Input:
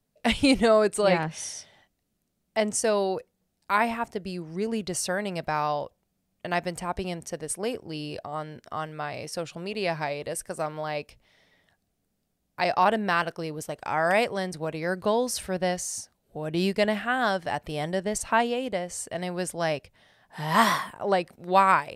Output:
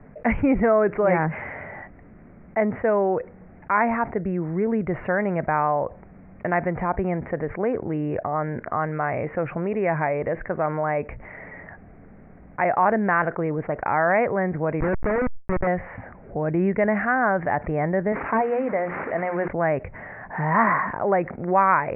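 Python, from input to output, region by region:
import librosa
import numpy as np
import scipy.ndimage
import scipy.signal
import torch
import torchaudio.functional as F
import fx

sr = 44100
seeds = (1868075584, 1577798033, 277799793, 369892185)

y = fx.chain(x, sr, fx.lowpass(hz=2000.0, slope=12),
    fx.schmitt(flips_db=-29.0),
    fx.sustainer(db_per_s=69.0), at=(14.8, 15.67))
y = fx.chain(y, sr, fx.delta_mod(bps=32000, step_db=-35.5),
    fx.highpass(hz=250.0, slope=6),
    fx.hum_notches(base_hz=60, count=7), at=(18.12, 19.48))
y = scipy.signal.sosfilt(scipy.signal.butter(12, 2200.0, 'lowpass', fs=sr, output='sos'), y)
y = fx.env_flatten(y, sr, amount_pct=50)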